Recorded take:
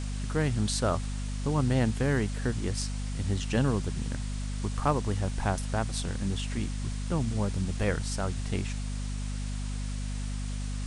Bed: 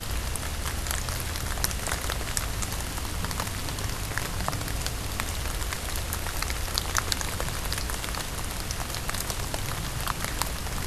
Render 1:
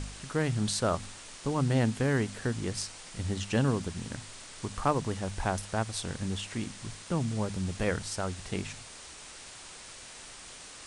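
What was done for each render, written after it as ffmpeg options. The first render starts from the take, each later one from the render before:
-af "bandreject=f=50:t=h:w=4,bandreject=f=100:t=h:w=4,bandreject=f=150:t=h:w=4,bandreject=f=200:t=h:w=4,bandreject=f=250:t=h:w=4"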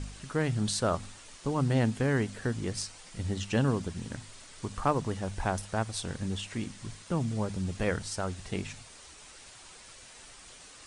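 -af "afftdn=nr=6:nf=-48"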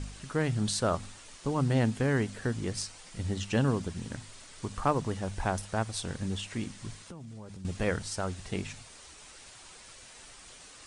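-filter_complex "[0:a]asettb=1/sr,asplit=3[s0][s1][s2];[s0]atrim=end=7.004[s3];[s1]atrim=start=7:end=7.65,asetpts=PTS-STARTPTS,afade=t=in:d=0.004:c=qsin,afade=t=out:st=0.646:d=0.004:c=qsin,acompressor=threshold=0.00794:ratio=6:attack=3.2:release=140:knee=1:detection=peak[s4];[s2]atrim=start=7.646[s5];[s3][s4]acrossfade=d=0.004:c1=hsin:c2=qsin[s6];[s6][s5]acrossfade=d=0.004:c1=qsin:c2=hsin"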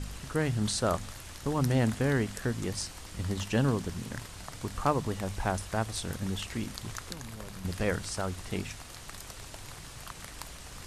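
-filter_complex "[1:a]volume=0.178[s0];[0:a][s0]amix=inputs=2:normalize=0"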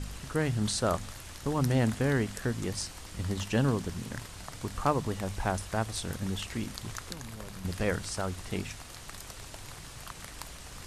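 -af anull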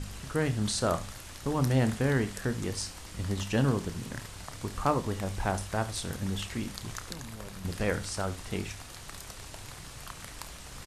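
-filter_complex "[0:a]asplit=2[s0][s1];[s1]adelay=30,volume=0.251[s2];[s0][s2]amix=inputs=2:normalize=0,aecho=1:1:71:0.158"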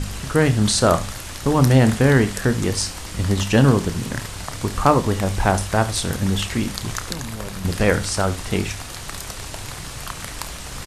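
-af "volume=3.98,alimiter=limit=0.794:level=0:latency=1"

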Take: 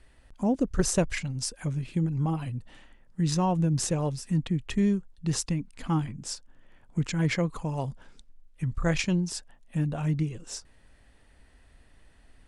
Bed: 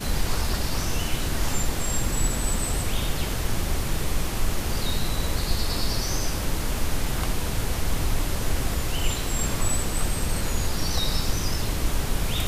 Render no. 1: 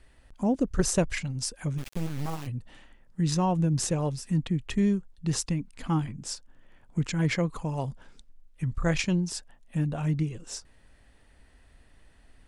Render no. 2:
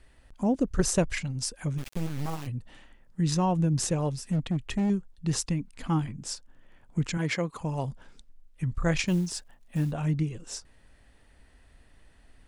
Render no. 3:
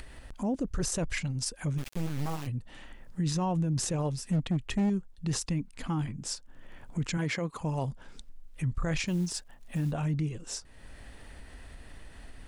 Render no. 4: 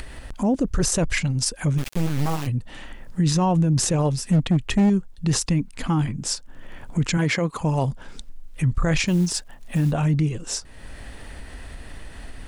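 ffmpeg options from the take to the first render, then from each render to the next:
-filter_complex "[0:a]asplit=3[s0][s1][s2];[s0]afade=t=out:st=1.77:d=0.02[s3];[s1]acrusher=bits=4:dc=4:mix=0:aa=0.000001,afade=t=in:st=1.77:d=0.02,afade=t=out:st=2.46:d=0.02[s4];[s2]afade=t=in:st=2.46:d=0.02[s5];[s3][s4][s5]amix=inputs=3:normalize=0"
-filter_complex "[0:a]asettb=1/sr,asplit=3[s0][s1][s2];[s0]atrim=end=4.284[s3];[s1]atrim=start=4.28:end=4.9,asetpts=PTS-STARTPTS,afade=t=in:d=0.004:c=qsin,afade=t=out:st=0.616:d=0.004:c=qsin,volume=13.3,asoftclip=hard,volume=0.075[s4];[s2]atrim=start=4.896[s5];[s3][s4]acrossfade=d=0.004:c1=hsin:c2=qsin[s6];[s6][s5]acrossfade=d=0.004:c1=qsin:c2=hsin,asettb=1/sr,asplit=3[s7][s8][s9];[s7]atrim=end=7.174[s10];[s8]atrim=start=7.17:end=7.61,asetpts=PTS-STARTPTS,afade=t=in:d=0.004:c=qsin,afade=t=out:st=0.436:d=0.004:c=qsin,highpass=f=240:p=1[s11];[s9]atrim=start=7.606[s12];[s10][s11]acrossfade=d=0.004:c1=hsin:c2=qsin[s13];[s13][s12]acrossfade=d=0.004:c1=qsin:c2=hsin,asettb=1/sr,asplit=3[s14][s15][s16];[s14]atrim=end=9.074[s17];[s15]atrim=start=9.07:end=9.92,asetpts=PTS-STARTPTS,afade=t=in:d=0.004:c=qsin,afade=t=out:st=0.846:d=0.004:c=qsin,acrusher=bits=7:mode=log:mix=0:aa=0.000001[s18];[s16]atrim=start=9.916[s19];[s17][s18]acrossfade=d=0.004:c1=hsin:c2=qsin[s20];[s20][s19]acrossfade=d=0.004:c1=qsin:c2=hsin"
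-af "alimiter=limit=0.0708:level=0:latency=1:release=14,acompressor=mode=upward:threshold=0.0178:ratio=2.5"
-af "volume=2.99"

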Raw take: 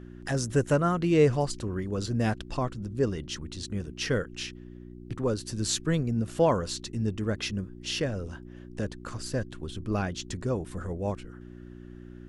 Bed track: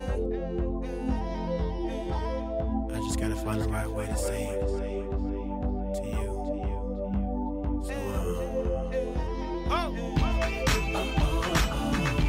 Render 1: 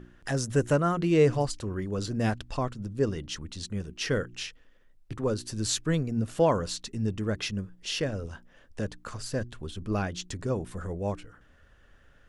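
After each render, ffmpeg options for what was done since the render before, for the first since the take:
-af "bandreject=f=60:t=h:w=4,bandreject=f=120:t=h:w=4,bandreject=f=180:t=h:w=4,bandreject=f=240:t=h:w=4,bandreject=f=300:t=h:w=4,bandreject=f=360:t=h:w=4"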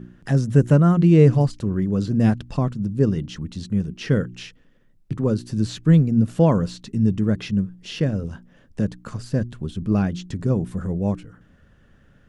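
-filter_complex "[0:a]acrossover=split=4200[s0][s1];[s1]acompressor=threshold=0.00708:ratio=4:attack=1:release=60[s2];[s0][s2]amix=inputs=2:normalize=0,equalizer=f=170:w=0.77:g=14.5"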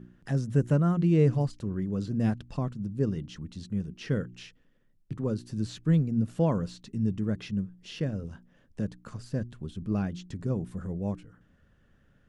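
-af "volume=0.355"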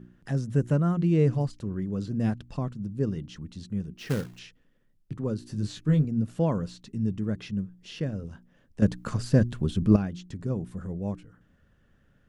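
-filter_complex "[0:a]asettb=1/sr,asplit=3[s0][s1][s2];[s0]atrim=end=3.984[s3];[s1]atrim=start=3.98:end=4.39,asetpts=PTS-STARTPTS,afade=t=in:d=0.004:c=qsin,afade=t=out:st=0.406:d=0.004:c=qsin,acrusher=bits=3:mode=log:mix=0:aa=0.000001[s4];[s2]atrim=start=4.386[s5];[s3][s4]acrossfade=d=0.004:c1=hsin:c2=qsin[s6];[s6][s5]acrossfade=d=0.004:c1=qsin:c2=hsin,asettb=1/sr,asplit=3[s7][s8][s9];[s7]atrim=end=5.404[s10];[s8]atrim=start=5.4:end=6.05,asetpts=PTS-STARTPTS,afade=t=in:d=0.004:c=qsin,afade=t=out:st=0.646:d=0.004:c=qsin,asplit=2[s11][s12];[s12]adelay=20,volume=0.631[s13];[s11][s13]amix=inputs=2:normalize=0,atrim=end_sample=28665[s14];[s9]atrim=start=6.046[s15];[s10][s14]acrossfade=d=0.004:c1=hsin:c2=qsin[s16];[s16][s15]acrossfade=d=0.004:c1=qsin:c2=hsin,asplit=3[s17][s18][s19];[s17]atrim=end=8.822[s20];[s18]atrim=start=8.818:end=9.962,asetpts=PTS-STARTPTS,volume=3.55[s21];[s19]atrim=start=9.958[s22];[s20][s21]acrossfade=d=0.004:c1=hsin:c2=hsin[s23];[s23][s22]acrossfade=d=0.004:c1=hsin:c2=hsin"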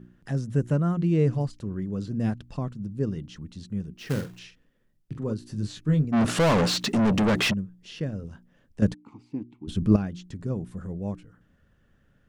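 -filter_complex "[0:a]asettb=1/sr,asplit=3[s0][s1][s2];[s0]atrim=end=4.104[s3];[s1]atrim=start=4.1:end=5.33,asetpts=PTS-STARTPTS,afade=t=in:d=0.004:c=qsin,afade=t=out:st=1.226:d=0.004:c=qsin,asplit=2[s4][s5];[s5]adelay=44,volume=0.398[s6];[s4][s6]amix=inputs=2:normalize=0,atrim=end_sample=54243[s7];[s2]atrim=start=5.326[s8];[s3][s7]acrossfade=d=0.004:c1=hsin:c2=qsin[s9];[s9][s8]acrossfade=d=0.004:c1=qsin:c2=hsin,asplit=3[s10][s11][s12];[s10]afade=t=out:st=6.12:d=0.02[s13];[s11]asplit=2[s14][s15];[s15]highpass=f=720:p=1,volume=70.8,asoftclip=type=tanh:threshold=0.2[s16];[s14][s16]amix=inputs=2:normalize=0,lowpass=f=4300:p=1,volume=0.501,afade=t=in:st=6.12:d=0.02,afade=t=out:st=7.52:d=0.02[s17];[s12]afade=t=in:st=7.52:d=0.02[s18];[s13][s17][s18]amix=inputs=3:normalize=0,asplit=3[s19][s20][s21];[s19]afade=t=out:st=8.93:d=0.02[s22];[s20]asplit=3[s23][s24][s25];[s23]bandpass=f=300:t=q:w=8,volume=1[s26];[s24]bandpass=f=870:t=q:w=8,volume=0.501[s27];[s25]bandpass=f=2240:t=q:w=8,volume=0.355[s28];[s26][s27][s28]amix=inputs=3:normalize=0,afade=t=in:st=8.93:d=0.02,afade=t=out:st=9.67:d=0.02[s29];[s21]afade=t=in:st=9.67:d=0.02[s30];[s22][s29][s30]amix=inputs=3:normalize=0"

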